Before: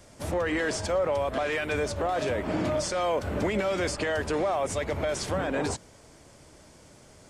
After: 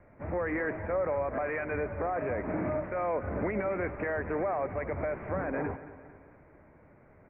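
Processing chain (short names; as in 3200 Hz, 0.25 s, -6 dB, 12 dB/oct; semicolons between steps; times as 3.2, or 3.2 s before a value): steep low-pass 2300 Hz 72 dB/oct; feedback echo 0.225 s, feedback 51%, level -15 dB; gain -4 dB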